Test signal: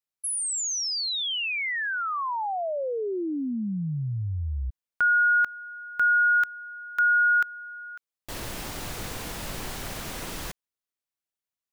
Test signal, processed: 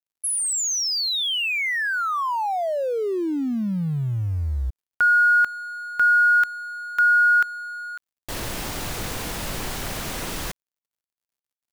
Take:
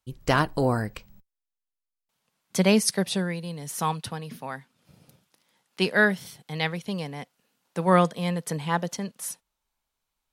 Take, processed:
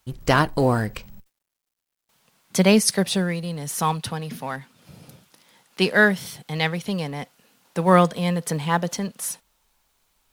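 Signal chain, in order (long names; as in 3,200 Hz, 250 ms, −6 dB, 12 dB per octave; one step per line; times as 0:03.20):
mu-law and A-law mismatch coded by mu
level +3.5 dB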